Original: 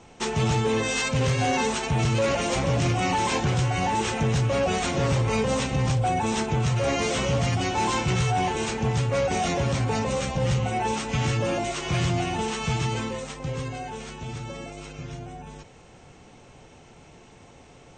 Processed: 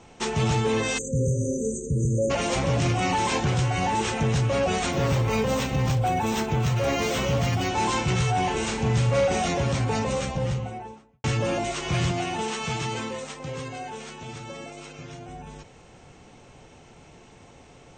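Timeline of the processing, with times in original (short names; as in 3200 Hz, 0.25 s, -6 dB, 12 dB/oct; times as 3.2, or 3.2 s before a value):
0.98–2.3 spectral delete 580–6000 Hz
4.92–7.69 decimation joined by straight lines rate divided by 2×
8.44–9.42 flutter echo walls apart 7.1 m, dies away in 0.4 s
10.08–11.24 studio fade out
12.11–15.29 HPF 210 Hz 6 dB/oct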